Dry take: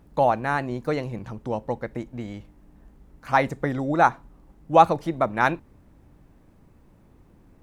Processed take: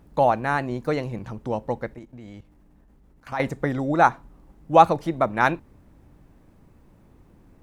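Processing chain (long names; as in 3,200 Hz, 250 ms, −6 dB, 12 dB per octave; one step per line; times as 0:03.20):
0:01.94–0:03.40: output level in coarse steps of 14 dB
level +1 dB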